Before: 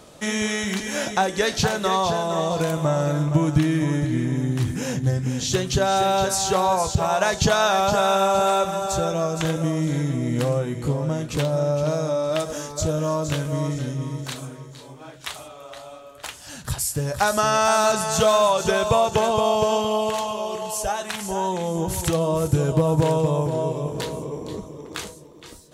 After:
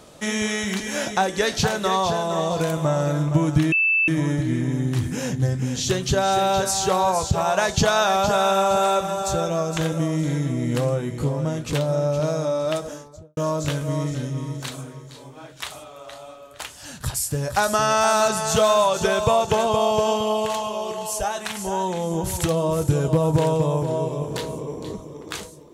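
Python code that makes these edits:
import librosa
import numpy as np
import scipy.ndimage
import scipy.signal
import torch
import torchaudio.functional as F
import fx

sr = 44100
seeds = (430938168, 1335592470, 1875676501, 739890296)

y = fx.studio_fade_out(x, sr, start_s=12.28, length_s=0.73)
y = fx.edit(y, sr, fx.insert_tone(at_s=3.72, length_s=0.36, hz=2640.0, db=-16.0), tone=tone)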